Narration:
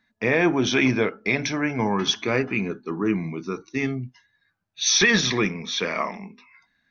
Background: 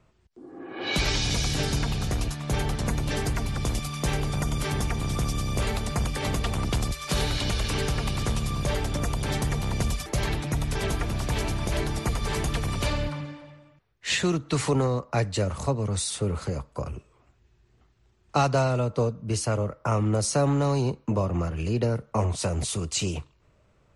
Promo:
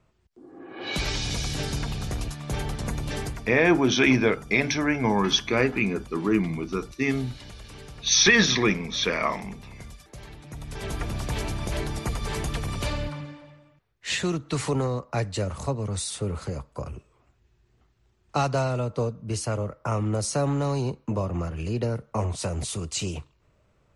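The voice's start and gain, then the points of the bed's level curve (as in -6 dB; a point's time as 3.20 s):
3.25 s, +0.5 dB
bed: 3.23 s -3 dB
3.56 s -16.5 dB
10.35 s -16.5 dB
11.02 s -2 dB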